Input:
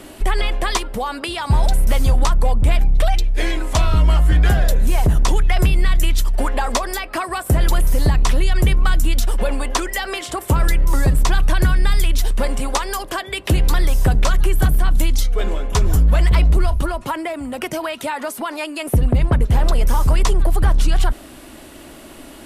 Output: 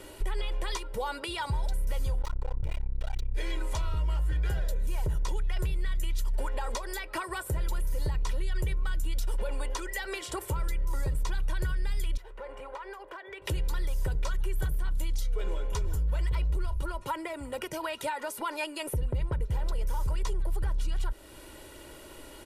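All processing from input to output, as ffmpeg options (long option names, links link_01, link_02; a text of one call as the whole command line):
ffmpeg -i in.wav -filter_complex "[0:a]asettb=1/sr,asplit=3[link_01][link_02][link_03];[link_01]atrim=end=2.214[link_04];[link_02]atrim=start=2.21:end=3.34,asetpts=PTS-STARTPTS,afade=type=in:duration=0.004:curve=qsin,afade=type=out:start_time=1.126:duration=0.004:curve=qsin,adynamicsmooth=sensitivity=6.5:basefreq=1000,aeval=exprs='clip(val(0),-1,0.0299)':channel_layout=same[link_05];[link_03]atrim=start=3.336[link_06];[link_04][link_05]acrossfade=duration=0.004:curve1=hsin:curve2=qsin[link_07];[link_07][link_06]acrossfade=duration=0.004:curve1=qsin:curve2=hsin,asettb=1/sr,asplit=3[link_08][link_09][link_10];[link_08]atrim=end=12.174[link_11];[link_09]atrim=start=12.17:end=13.42,asetpts=PTS-STARTPTS,afade=type=in:duration=0.004:curve=qsin,afade=type=out:start_time=1.246:duration=0.004:curve=qsin,acrossover=split=360 2400:gain=0.112 1 0.0708[link_12][link_13][link_14];[link_12][link_13][link_14]amix=inputs=3:normalize=0,acompressor=threshold=-32dB:ratio=3:attack=3.2:release=140:knee=1:detection=peak,volume=26dB,asoftclip=hard,volume=-26dB[link_15];[link_10]atrim=start=13.416[link_16];[link_11][link_15]acrossfade=duration=0.004:curve1=hsin:curve2=qsin[link_17];[link_17][link_16]acrossfade=duration=0.004:curve1=qsin:curve2=hsin,aecho=1:1:2.1:0.61,alimiter=limit=-13.5dB:level=0:latency=1:release=317,volume=-9dB" out.wav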